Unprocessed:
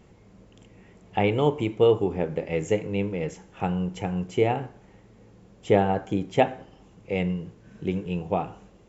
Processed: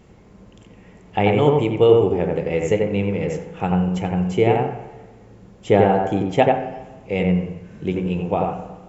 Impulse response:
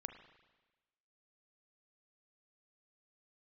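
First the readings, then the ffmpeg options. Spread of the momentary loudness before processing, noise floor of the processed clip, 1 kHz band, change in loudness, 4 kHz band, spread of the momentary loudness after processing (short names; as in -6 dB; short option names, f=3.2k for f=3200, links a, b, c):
12 LU, -48 dBFS, +6.5 dB, +6.5 dB, +5.0 dB, 12 LU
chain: -filter_complex "[0:a]asplit=2[a][b];[1:a]atrim=start_sample=2205,lowpass=2.2k,adelay=89[c];[b][c]afir=irnorm=-1:irlink=0,volume=2.5dB[d];[a][d]amix=inputs=2:normalize=0,volume=4dB"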